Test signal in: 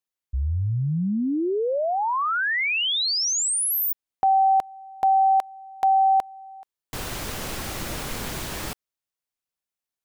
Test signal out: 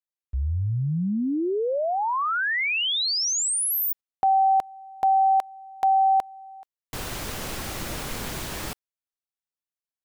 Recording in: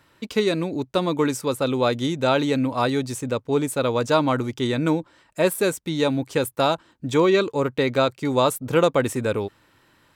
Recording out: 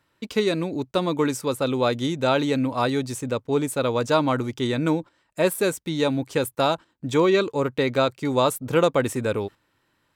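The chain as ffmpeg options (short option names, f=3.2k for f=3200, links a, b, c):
-af "agate=range=-9dB:threshold=-50dB:ratio=16:release=57:detection=rms,volume=-1dB"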